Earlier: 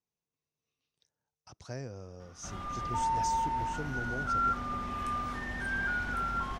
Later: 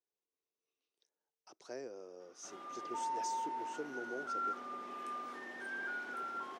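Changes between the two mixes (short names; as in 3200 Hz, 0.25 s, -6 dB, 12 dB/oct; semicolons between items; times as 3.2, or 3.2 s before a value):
speech +3.5 dB; master: add ladder high-pass 300 Hz, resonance 45%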